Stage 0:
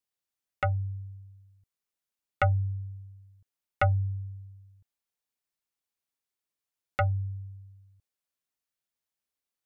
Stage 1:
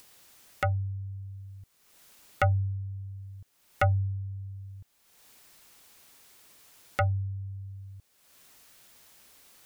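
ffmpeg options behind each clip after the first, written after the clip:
-af "acompressor=mode=upward:threshold=-31dB:ratio=2.5"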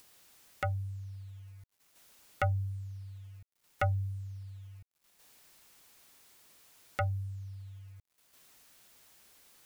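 -af "acrusher=bits=9:mix=0:aa=0.000001,volume=-5.5dB"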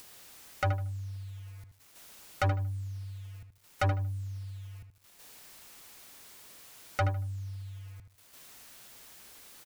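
-filter_complex "[0:a]asoftclip=type=tanh:threshold=-32dB,asplit=2[a][b];[b]adelay=77,lowpass=f=2.9k:p=1,volume=-8dB,asplit=2[c][d];[d]adelay=77,lowpass=f=2.9k:p=1,volume=0.25,asplit=2[e][f];[f]adelay=77,lowpass=f=2.9k:p=1,volume=0.25[g];[c][e][g]amix=inputs=3:normalize=0[h];[a][h]amix=inputs=2:normalize=0,volume=8.5dB"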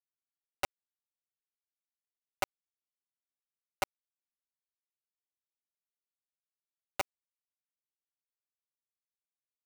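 -filter_complex "[0:a]asplit=3[a][b][c];[a]bandpass=f=730:t=q:w=8,volume=0dB[d];[b]bandpass=f=1.09k:t=q:w=8,volume=-6dB[e];[c]bandpass=f=2.44k:t=q:w=8,volume=-9dB[f];[d][e][f]amix=inputs=3:normalize=0,acrusher=bits=4:mix=0:aa=0.000001,volume=4dB"

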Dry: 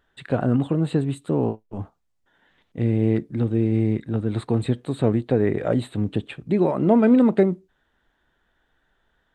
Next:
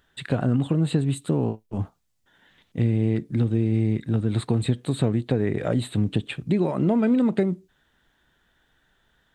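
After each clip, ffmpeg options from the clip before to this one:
-af "highshelf=f=2.1k:g=11,acompressor=threshold=-23dB:ratio=2.5,equalizer=f=130:t=o:w=2.3:g=7,volume=-1.5dB"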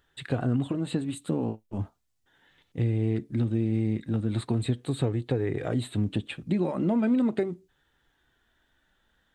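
-af "flanger=delay=2.3:depth=1.4:regen=-56:speed=0.38:shape=sinusoidal"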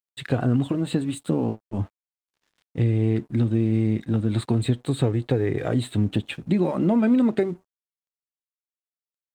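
-af "aeval=exprs='sgn(val(0))*max(abs(val(0))-0.00126,0)':c=same,volume=5dB"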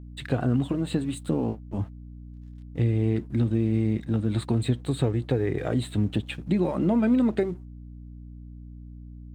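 -af "aeval=exprs='val(0)+0.0126*(sin(2*PI*60*n/s)+sin(2*PI*2*60*n/s)/2+sin(2*PI*3*60*n/s)/3+sin(2*PI*4*60*n/s)/4+sin(2*PI*5*60*n/s)/5)':c=same,volume=-2.5dB"

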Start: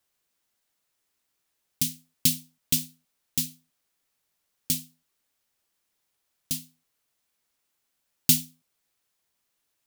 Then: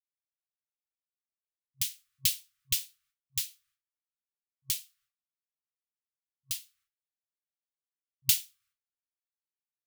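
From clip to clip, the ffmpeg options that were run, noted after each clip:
-af "agate=range=-33dB:threshold=-60dB:ratio=3:detection=peak,bass=f=250:g=-2,treble=f=4k:g=-5,afftfilt=real='re*(1-between(b*sr/4096,130,1100))':imag='im*(1-between(b*sr/4096,130,1100))':win_size=4096:overlap=0.75"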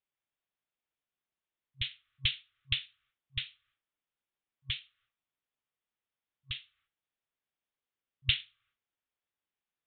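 -af "aresample=8000,aresample=44100,volume=6.5dB"

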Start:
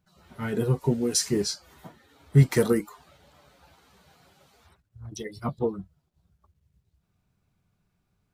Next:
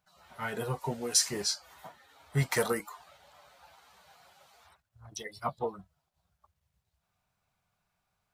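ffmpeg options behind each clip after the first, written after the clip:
-af "lowshelf=f=490:t=q:w=1.5:g=-11"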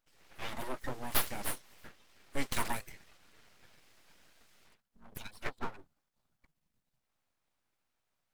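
-af "aeval=exprs='abs(val(0))':c=same,volume=-2dB"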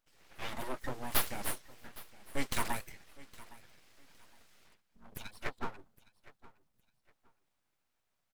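-af "aecho=1:1:813|1626:0.1|0.026"

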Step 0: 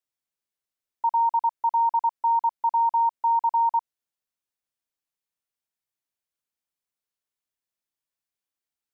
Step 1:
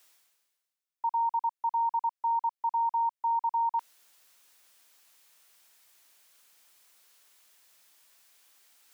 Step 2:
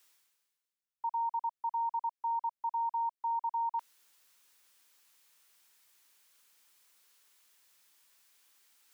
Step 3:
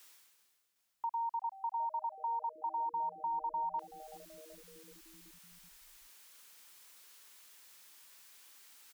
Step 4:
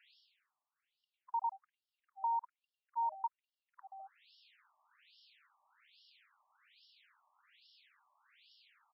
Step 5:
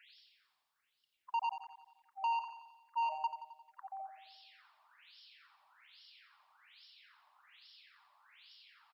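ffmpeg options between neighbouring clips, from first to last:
-af "highpass=f=870:p=1,areverse,acompressor=mode=upward:threshold=-34dB:ratio=2.5,areverse,volume=-3.5dB"
-af "equalizer=f=670:w=7.7:g=-12.5,volume=-4.5dB"
-filter_complex "[0:a]acompressor=threshold=-52dB:ratio=2,asplit=7[a][b][c][d][e][f][g];[b]adelay=379,afreqshift=-150,volume=-17dB[h];[c]adelay=758,afreqshift=-300,volume=-20.9dB[i];[d]adelay=1137,afreqshift=-450,volume=-24.8dB[j];[e]adelay=1516,afreqshift=-600,volume=-28.6dB[k];[f]adelay=1895,afreqshift=-750,volume=-32.5dB[l];[g]adelay=2274,afreqshift=-900,volume=-36.4dB[m];[a][h][i][j][k][l][m]amix=inputs=7:normalize=0,volume=8dB"
-af "afftfilt=real='re*between(b*sr/1024,840*pow(4000/840,0.5+0.5*sin(2*PI*1.2*pts/sr))/1.41,840*pow(4000/840,0.5+0.5*sin(2*PI*1.2*pts/sr))*1.41)':imag='im*between(b*sr/1024,840*pow(4000/840,0.5+0.5*sin(2*PI*1.2*pts/sr))/1.41,840*pow(4000/840,0.5+0.5*sin(2*PI*1.2*pts/sr))*1.41)':win_size=1024:overlap=0.75,volume=2dB"
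-filter_complex "[0:a]asoftclip=type=tanh:threshold=-35dB,asplit=2[a][b];[b]aecho=0:1:88|176|264|352|440|528|616:0.299|0.17|0.097|0.0553|0.0315|0.018|0.0102[c];[a][c]amix=inputs=2:normalize=0,volume=5.5dB"

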